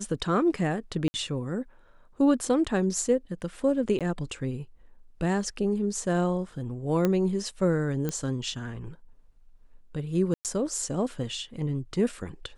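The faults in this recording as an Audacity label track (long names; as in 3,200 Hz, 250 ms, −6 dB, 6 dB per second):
1.080000	1.140000	drop-out 60 ms
3.990000	4.010000	drop-out 17 ms
7.050000	7.050000	click −12 dBFS
8.090000	8.090000	click −16 dBFS
10.340000	10.450000	drop-out 108 ms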